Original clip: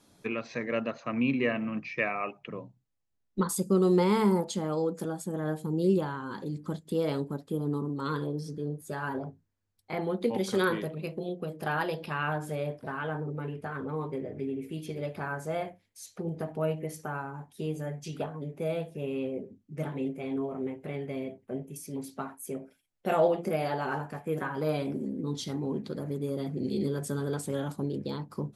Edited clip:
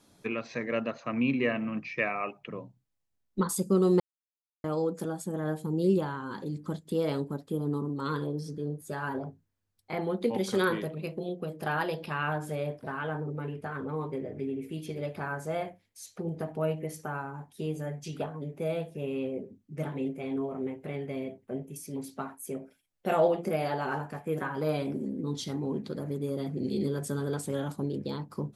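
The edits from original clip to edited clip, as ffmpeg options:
-filter_complex "[0:a]asplit=3[a][b][c];[a]atrim=end=4,asetpts=PTS-STARTPTS,afade=t=out:st=3.996:d=0.004:c=hsin[d];[b]atrim=start=4:end=4.64,asetpts=PTS-STARTPTS,volume=0[e];[c]atrim=start=4.64,asetpts=PTS-STARTPTS,afade=t=in:d=0.004:c=hsin[f];[d][e][f]concat=n=3:v=0:a=1"

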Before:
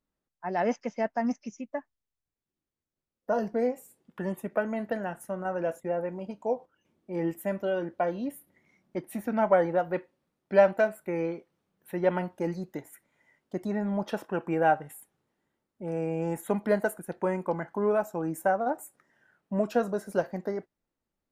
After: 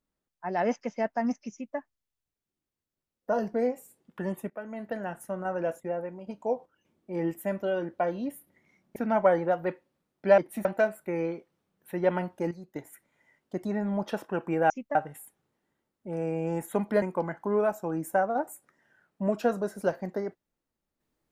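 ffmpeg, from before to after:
-filter_complex "[0:a]asplit=11[a][b][c][d][e][f][g][h][i][j][k];[a]atrim=end=4.5,asetpts=PTS-STARTPTS,afade=t=out:st=4.496:d=0.004:c=hsin:silence=0.158489[l];[b]atrim=start=4.5:end=6.27,asetpts=PTS-STARTPTS,afade=t=in:d=0.66:silence=0.158489,afade=t=out:st=1.22:d=0.55:silence=0.446684[m];[c]atrim=start=6.27:end=8.962,asetpts=PTS-STARTPTS,afade=t=in:d=0.004:c=hsin:silence=0.446684[n];[d]atrim=start=9.228:end=10.652[o];[e]atrim=start=8.958:end=9.232[p];[f]atrim=start=10.648:end=12.512[q];[g]atrim=start=12.508:end=12.762,asetpts=PTS-STARTPTS,volume=-9dB[r];[h]atrim=start=12.758:end=14.702[s];[i]atrim=start=1.528:end=1.782[t];[j]atrim=start=14.698:end=16.772[u];[k]atrim=start=17.328[v];[l][m][n]concat=n=3:v=0:a=1[w];[w][o]acrossfade=d=0.004:c1=hsin:c2=hsin[x];[x][p]acrossfade=d=0.004:c1=hsin:c2=hsin[y];[y][q]acrossfade=d=0.004:c1=hsin:c2=hsin[z];[z][r]acrossfade=d=0.004:c1=hsin:c2=hsin[aa];[aa][s]acrossfade=d=0.004:c1=hsin:c2=hsin[ab];[ab][t]acrossfade=d=0.004:c1=hsin:c2=hsin[ac];[ac][u]acrossfade=d=0.004:c1=hsin:c2=hsin[ad];[ad][v]acrossfade=d=0.004:c1=hsin:c2=hsin"

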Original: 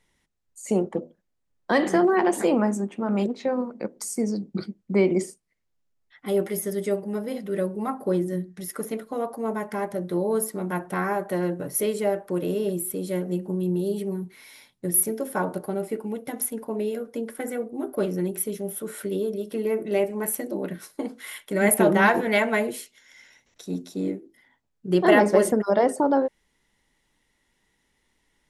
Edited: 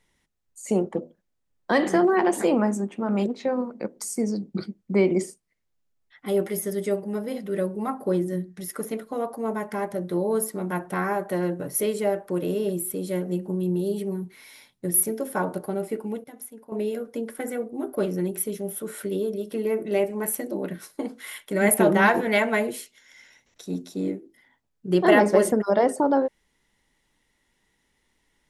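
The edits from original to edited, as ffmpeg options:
-filter_complex "[0:a]asplit=3[a][b][c];[a]atrim=end=16.242[d];[b]atrim=start=16.238:end=16.722,asetpts=PTS-STARTPTS,volume=-12dB[e];[c]atrim=start=16.718[f];[d][e]acrossfade=d=0.004:c1=hsin:c2=hsin[g];[g][f]acrossfade=d=0.004:c1=hsin:c2=hsin"

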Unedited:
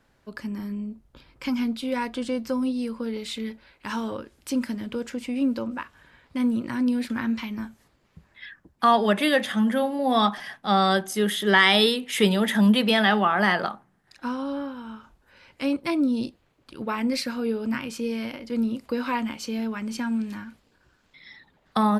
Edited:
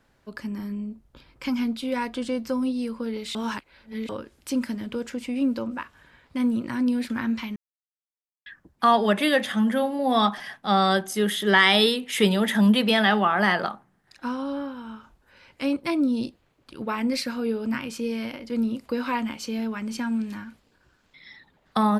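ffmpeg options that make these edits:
-filter_complex "[0:a]asplit=5[a][b][c][d][e];[a]atrim=end=3.352[f];[b]atrim=start=3.348:end=4.092,asetpts=PTS-STARTPTS,areverse[g];[c]atrim=start=4.088:end=7.56,asetpts=PTS-STARTPTS,afade=t=out:st=3.468:d=0.004:c=hsin[h];[d]atrim=start=7.56:end=8.46,asetpts=PTS-STARTPTS,volume=0[i];[e]atrim=start=8.46,asetpts=PTS-STARTPTS,afade=t=in:d=0.004:c=hsin[j];[f][g]acrossfade=d=0.004:c1=hsin:c2=hsin[k];[h][i][j]concat=n=3:v=0:a=1[l];[k][l]acrossfade=d=0.004:c1=hsin:c2=hsin"

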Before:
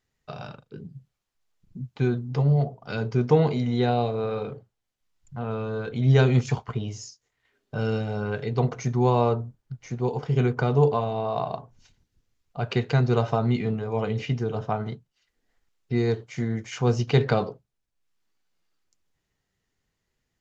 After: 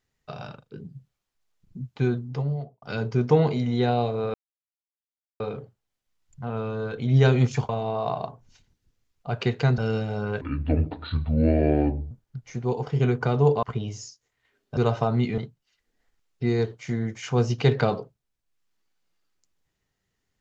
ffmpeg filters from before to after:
-filter_complex "[0:a]asplit=10[a][b][c][d][e][f][g][h][i][j];[a]atrim=end=2.82,asetpts=PTS-STARTPTS,afade=t=out:st=2.11:d=0.71[k];[b]atrim=start=2.82:end=4.34,asetpts=PTS-STARTPTS,afade=t=in:d=0.004:c=hsin,afade=t=out:st=1.516:d=0.004:c=hsin,apad=pad_dur=1.06[l];[c]atrim=start=4.34:end=6.632,asetpts=PTS-STARTPTS,afade=t=in:d=0.004:c=hsin[m];[d]atrim=start=10.988:end=13.082[n];[e]atrim=start=7.768:end=8.404[o];[f]atrim=start=8.4:end=9.47,asetpts=PTS-STARTPTS,asetrate=27783,aresample=44100[p];[g]atrim=start=9.466:end=10.992[q];[h]atrim=start=6.628:end=7.772[r];[i]atrim=start=13.078:end=13.692[s];[j]atrim=start=14.868[t];[k][l][m]concat=n=3:v=0:a=1[u];[u][n]acrossfade=d=0.004:c1=hsin:c2=hsin[v];[v][o]acrossfade=d=0.004:c1=hsin:c2=hsin[w];[w][p]acrossfade=d=0.004:c1=hsin:c2=hsin[x];[x][q]acrossfade=d=0.004:c1=hsin:c2=hsin[y];[y][r]acrossfade=d=0.004:c1=hsin:c2=hsin[z];[z][s]acrossfade=d=0.004:c1=hsin:c2=hsin[aa];[aa][t]acrossfade=d=0.004:c1=hsin:c2=hsin"

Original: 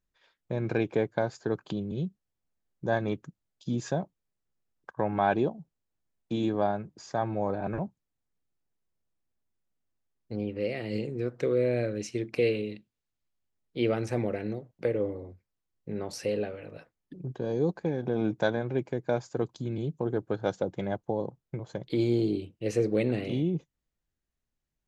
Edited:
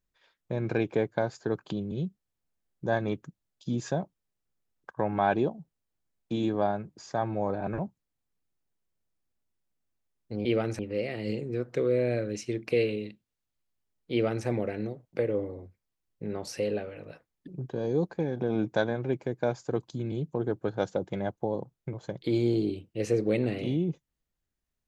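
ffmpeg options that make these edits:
-filter_complex "[0:a]asplit=3[a][b][c];[a]atrim=end=10.452[d];[b]atrim=start=13.778:end=14.122[e];[c]atrim=start=10.448[f];[d][e]acrossfade=d=0.004:c1=hsin:c2=hsin[g];[g][f]acrossfade=d=0.004:c1=hsin:c2=hsin"

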